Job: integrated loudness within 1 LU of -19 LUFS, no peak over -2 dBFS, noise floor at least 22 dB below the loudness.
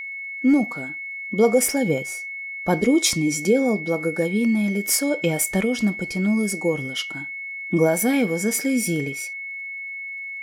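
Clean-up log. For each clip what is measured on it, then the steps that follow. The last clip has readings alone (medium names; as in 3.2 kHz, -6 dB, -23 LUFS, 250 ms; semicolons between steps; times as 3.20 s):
tick rate 31 per s; steady tone 2.2 kHz; tone level -30 dBFS; loudness -22.5 LUFS; peak level -5.5 dBFS; loudness target -19.0 LUFS
-> de-click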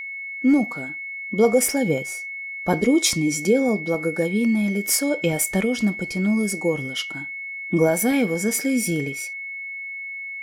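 tick rate 0.19 per s; steady tone 2.2 kHz; tone level -30 dBFS
-> band-stop 2.2 kHz, Q 30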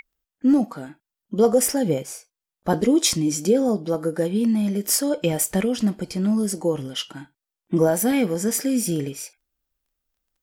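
steady tone not found; loudness -22.0 LUFS; peak level -6.0 dBFS; loudness target -19.0 LUFS
-> trim +3 dB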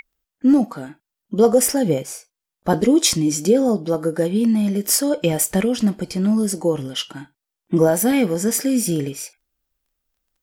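loudness -19.0 LUFS; peak level -3.0 dBFS; noise floor -85 dBFS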